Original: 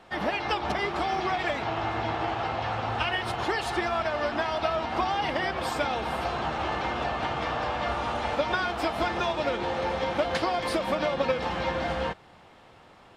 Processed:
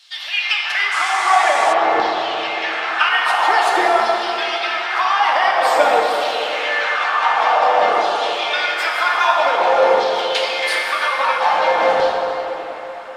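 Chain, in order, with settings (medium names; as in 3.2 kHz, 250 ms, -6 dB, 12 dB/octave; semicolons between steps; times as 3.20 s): reverb removal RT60 0.64 s; in parallel at 0 dB: compression, threshold -35 dBFS, peak gain reduction 13 dB; on the sum: LFO high-pass saw down 0.5 Hz 400–4400 Hz; plate-style reverb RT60 3.8 s, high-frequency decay 0.55×, DRR -2 dB; 0.91–1.72 s: band noise 2.3–9 kHz -39 dBFS; trim +5.5 dB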